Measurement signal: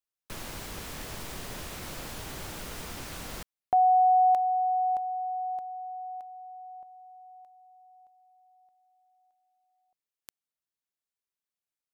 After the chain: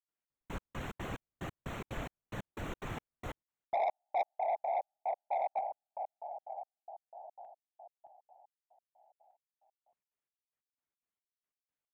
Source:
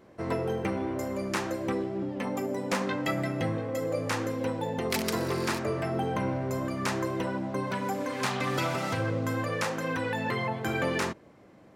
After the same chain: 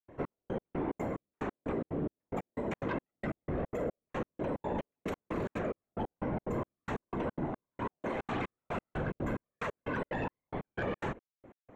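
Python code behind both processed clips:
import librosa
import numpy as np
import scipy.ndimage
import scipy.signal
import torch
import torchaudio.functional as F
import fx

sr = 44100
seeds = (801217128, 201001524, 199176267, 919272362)

p1 = fx.over_compress(x, sr, threshold_db=-32.0, ratio=-0.5)
p2 = x + (p1 * librosa.db_to_amplitude(-1.0))
p3 = fx.whisperise(p2, sr, seeds[0])
p4 = np.convolve(p3, np.full(9, 1.0 / 9))[:len(p3)]
p5 = fx.step_gate(p4, sr, bpm=181, pattern='.xx...x..xx', floor_db=-60.0, edge_ms=4.5)
p6 = 10.0 ** (-19.5 / 20.0) * np.tanh(p5 / 10.0 ** (-19.5 / 20.0))
y = p6 * librosa.db_to_amplitude(-6.0)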